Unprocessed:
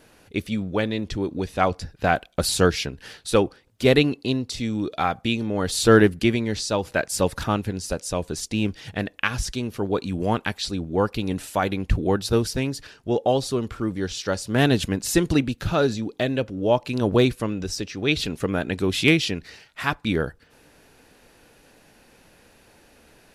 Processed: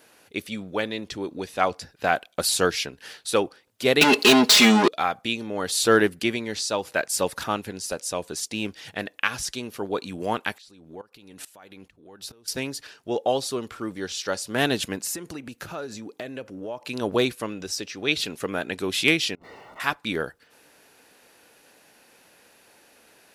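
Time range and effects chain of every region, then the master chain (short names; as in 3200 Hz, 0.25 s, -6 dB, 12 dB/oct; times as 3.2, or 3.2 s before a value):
4.01–4.88 overdrive pedal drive 35 dB, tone 3500 Hz, clips at -5.5 dBFS + comb 4.8 ms, depth 91%
10.58–12.48 compressor 10:1, threshold -29 dBFS + dB-ramp tremolo swelling 2.3 Hz, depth 19 dB
15.02–16.85 compressor 10:1, threshold -26 dBFS + bell 3600 Hz -7 dB 0.68 oct
19.35–19.8 zero-crossing step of -37 dBFS + polynomial smoothing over 65 samples + negative-ratio compressor -44 dBFS
whole clip: HPF 470 Hz 6 dB/oct; high shelf 11000 Hz +6 dB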